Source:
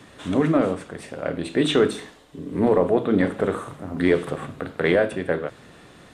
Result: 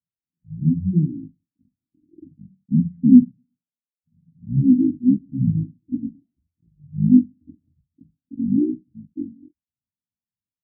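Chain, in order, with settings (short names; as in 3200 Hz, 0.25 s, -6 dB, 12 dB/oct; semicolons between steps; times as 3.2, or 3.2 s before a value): block floating point 3-bit; LPF 2300 Hz 12 dB/oct; resonant low shelf 700 Hz +11.5 dB, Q 1.5; speed mistake 78 rpm record played at 45 rpm; spectral expander 2.5:1; gain -6.5 dB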